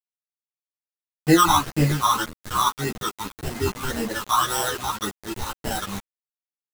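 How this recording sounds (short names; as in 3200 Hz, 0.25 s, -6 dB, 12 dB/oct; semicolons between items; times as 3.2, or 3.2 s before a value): aliases and images of a low sample rate 2300 Hz, jitter 0%; phasing stages 12, 1.8 Hz, lowest notch 510–1200 Hz; a quantiser's noise floor 6-bit, dither none; a shimmering, thickened sound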